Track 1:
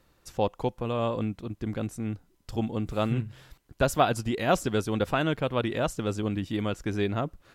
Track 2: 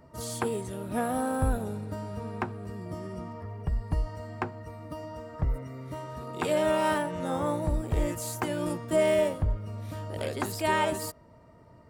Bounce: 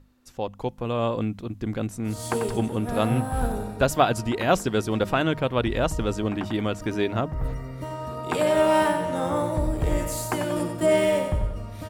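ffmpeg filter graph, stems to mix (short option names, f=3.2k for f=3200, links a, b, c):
-filter_complex "[0:a]aeval=exprs='val(0)+0.00562*(sin(2*PI*50*n/s)+sin(2*PI*2*50*n/s)/2+sin(2*PI*3*50*n/s)/3+sin(2*PI*4*50*n/s)/4+sin(2*PI*5*50*n/s)/5)':c=same,volume=-4.5dB,asplit=2[a][b];[1:a]adelay=1900,volume=-4.5dB,asplit=2[c][d];[d]volume=-7.5dB[e];[b]apad=whole_len=608338[f];[c][f]sidechaincompress=threshold=-41dB:ratio=8:attack=10:release=219[g];[e]aecho=0:1:93|186|279|372|465|558|651:1|0.48|0.23|0.111|0.0531|0.0255|0.0122[h];[a][g][h]amix=inputs=3:normalize=0,bandreject=f=50:t=h:w=6,bandreject=f=100:t=h:w=6,bandreject=f=150:t=h:w=6,bandreject=f=200:t=h:w=6,dynaudnorm=f=470:g=3:m=8dB"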